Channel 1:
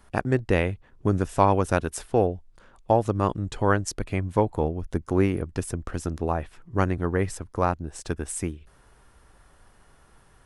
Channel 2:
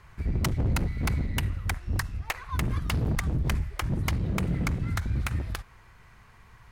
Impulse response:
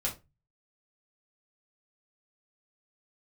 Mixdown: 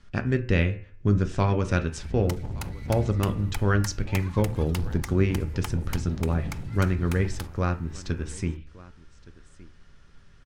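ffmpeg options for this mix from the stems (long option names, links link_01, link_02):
-filter_complex "[0:a]lowpass=frequency=6300:width=0.5412,lowpass=frequency=6300:width=1.3066,equalizer=frequency=770:width_type=o:width=1.2:gain=-14,bandreject=frequency=74.12:width_type=h:width=4,bandreject=frequency=148.24:width_type=h:width=4,bandreject=frequency=222.36:width_type=h:width=4,bandreject=frequency=296.48:width_type=h:width=4,bandreject=frequency=370.6:width_type=h:width=4,bandreject=frequency=444.72:width_type=h:width=4,bandreject=frequency=518.84:width_type=h:width=4,bandreject=frequency=592.96:width_type=h:width=4,bandreject=frequency=667.08:width_type=h:width=4,bandreject=frequency=741.2:width_type=h:width=4,bandreject=frequency=815.32:width_type=h:width=4,bandreject=frequency=889.44:width_type=h:width=4,bandreject=frequency=963.56:width_type=h:width=4,bandreject=frequency=1037.68:width_type=h:width=4,bandreject=frequency=1111.8:width_type=h:width=4,bandreject=frequency=1185.92:width_type=h:width=4,bandreject=frequency=1260.04:width_type=h:width=4,bandreject=frequency=1334.16:width_type=h:width=4,bandreject=frequency=1408.28:width_type=h:width=4,bandreject=frequency=1482.4:width_type=h:width=4,bandreject=frequency=1556.52:width_type=h:width=4,bandreject=frequency=1630.64:width_type=h:width=4,bandreject=frequency=1704.76:width_type=h:width=4,bandreject=frequency=1778.88:width_type=h:width=4,bandreject=frequency=1853:width_type=h:width=4,bandreject=frequency=1927.12:width_type=h:width=4,bandreject=frequency=2001.24:width_type=h:width=4,bandreject=frequency=2075.36:width_type=h:width=4,bandreject=frequency=2149.48:width_type=h:width=4,bandreject=frequency=2223.6:width_type=h:width=4,bandreject=frequency=2297.72:width_type=h:width=4,bandreject=frequency=2371.84:width_type=h:width=4,bandreject=frequency=2445.96:width_type=h:width=4,bandreject=frequency=2520.08:width_type=h:width=4,bandreject=frequency=2594.2:width_type=h:width=4,bandreject=frequency=2668.32:width_type=h:width=4,bandreject=frequency=2742.44:width_type=h:width=4,bandreject=frequency=2816.56:width_type=h:width=4,bandreject=frequency=2890.68:width_type=h:width=4,bandreject=frequency=2964.8:width_type=h:width=4,volume=0.5dB,asplit=3[link_01][link_02][link_03];[link_02]volume=-11dB[link_04];[link_03]volume=-19.5dB[link_05];[1:a]equalizer=frequency=870:width=7.6:gain=10,acompressor=threshold=-29dB:ratio=3,adynamicequalizer=threshold=0.00282:dfrequency=2900:dqfactor=0.7:tfrequency=2900:tqfactor=0.7:attack=5:release=100:ratio=0.375:range=3.5:mode=boostabove:tftype=highshelf,adelay=1850,volume=-4.5dB,asplit=2[link_06][link_07];[link_07]volume=-18dB[link_08];[2:a]atrim=start_sample=2205[link_09];[link_04][link_08]amix=inputs=2:normalize=0[link_10];[link_10][link_09]afir=irnorm=-1:irlink=0[link_11];[link_05]aecho=0:1:1168:1[link_12];[link_01][link_06][link_11][link_12]amix=inputs=4:normalize=0"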